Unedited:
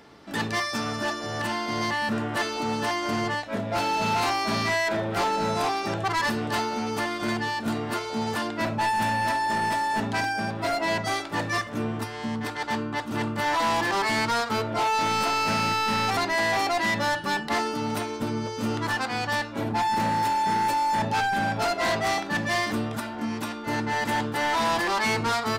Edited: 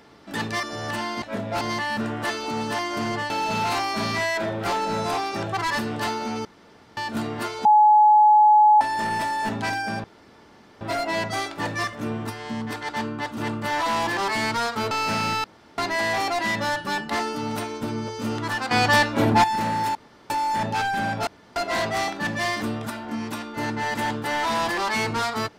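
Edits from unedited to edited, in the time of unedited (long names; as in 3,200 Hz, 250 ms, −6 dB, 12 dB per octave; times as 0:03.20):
0:00.63–0:01.14: remove
0:03.42–0:03.81: move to 0:01.73
0:06.96–0:07.48: fill with room tone
0:08.16–0:09.32: beep over 848 Hz −11 dBFS
0:10.55: splice in room tone 0.77 s
0:14.65–0:15.30: remove
0:15.83–0:16.17: fill with room tone
0:19.10–0:19.83: clip gain +9 dB
0:20.34–0:20.69: fill with room tone
0:21.66: splice in room tone 0.29 s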